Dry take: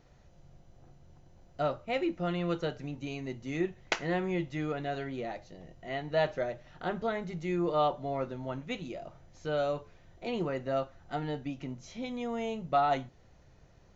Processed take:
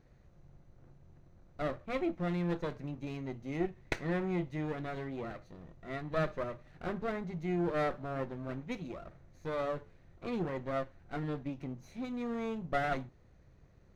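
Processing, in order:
lower of the sound and its delayed copy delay 0.47 ms
high-shelf EQ 2,300 Hz −10 dB
level −1 dB

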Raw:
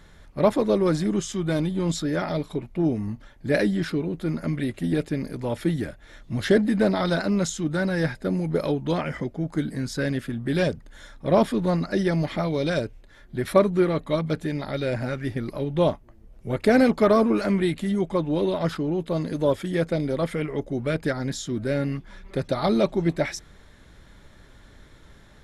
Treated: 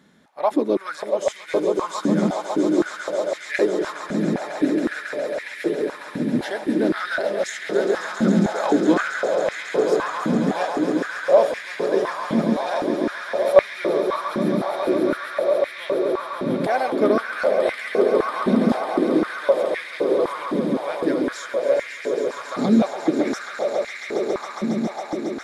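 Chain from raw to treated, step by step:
0:08.15–0:09.01: parametric band 1,200 Hz +9.5 dB 2.4 octaves
on a send: echo that builds up and dies away 137 ms, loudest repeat 8, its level −9 dB
on the sum: high-pass on a step sequencer 3.9 Hz 220–2,000 Hz
level −4.5 dB

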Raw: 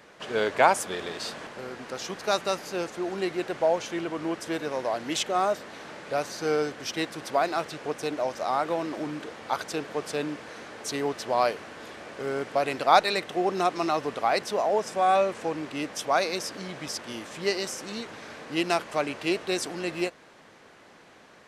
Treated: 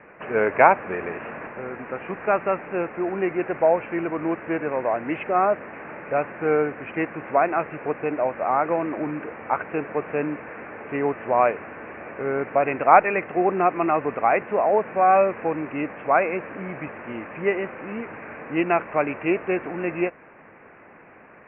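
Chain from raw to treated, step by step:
Butterworth low-pass 2,600 Hz 96 dB per octave
level +5 dB

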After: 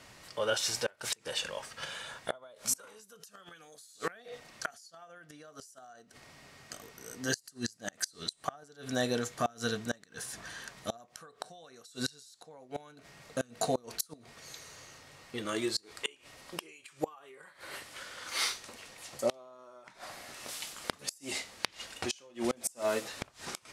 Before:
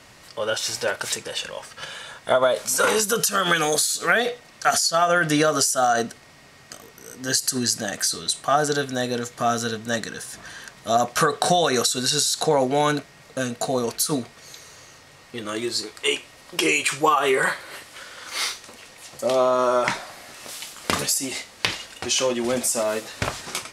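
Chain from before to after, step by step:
gate with flip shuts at −12 dBFS, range −28 dB
level −5.5 dB

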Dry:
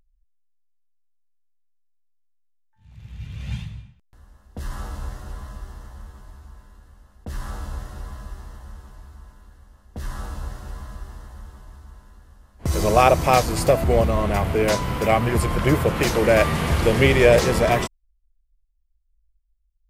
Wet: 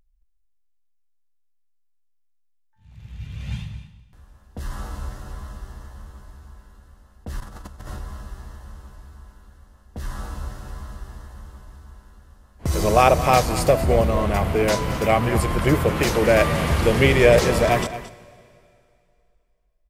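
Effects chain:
0:07.40–0:07.99: compressor whose output falls as the input rises −35 dBFS, ratio −0.5
single-tap delay 222 ms −14 dB
dense smooth reverb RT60 2.5 s, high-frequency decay 1×, DRR 18.5 dB

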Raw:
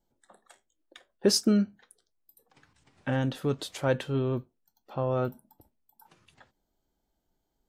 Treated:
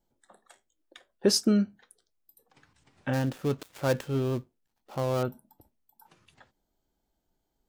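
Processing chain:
0:03.13–0:05.23: gap after every zero crossing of 0.13 ms

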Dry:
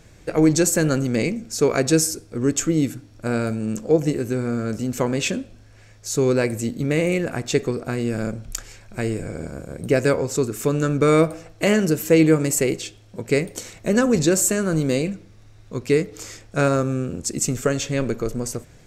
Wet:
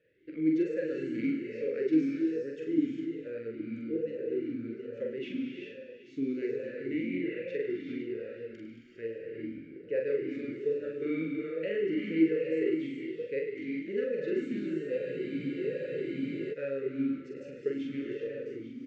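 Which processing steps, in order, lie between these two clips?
delay that plays each chunk backwards 456 ms, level −12 dB
Butterworth band-reject 800 Hz, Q 1.2
high-frequency loss of the air 230 metres
double-tracking delay 44 ms −3 dB
on a send: feedback echo with a high-pass in the loop 102 ms, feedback 65%, level −10.5 dB
on the sum: reverb whose tail is shaped and stops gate 430 ms rising, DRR 1.5 dB
frozen spectrum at 0:14.99, 1.54 s
formant filter swept between two vowels e-i 1.2 Hz
level −5.5 dB

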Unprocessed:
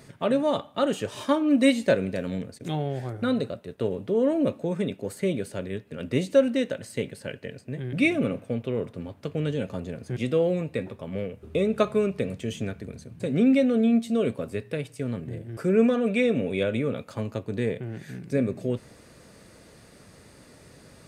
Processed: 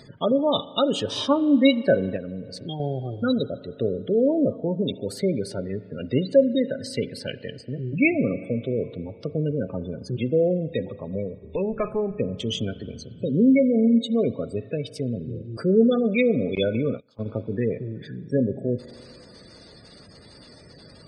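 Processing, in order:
0:11.40–0:12.20: tube saturation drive 21 dB, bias 0.55
gate on every frequency bin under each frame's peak −20 dB strong
spring reverb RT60 2.4 s, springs 38 ms, chirp 60 ms, DRR 16.5 dB
0:02.16–0:02.80: downward compressor 3 to 1, threshold −34 dBFS, peak gain reduction 8 dB
0:16.55–0:17.26: noise gate −28 dBFS, range −25 dB
flat-topped bell 4,200 Hz +12.5 dB 1.1 octaves
level +2.5 dB

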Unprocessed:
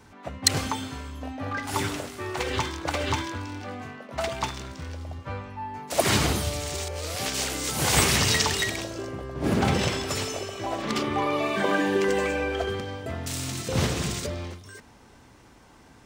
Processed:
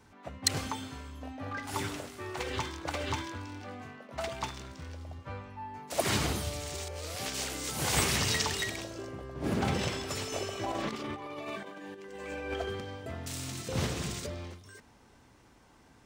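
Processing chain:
0:10.32–0:12.54: compressor whose output falls as the input rises −30 dBFS, ratio −0.5
level −7 dB

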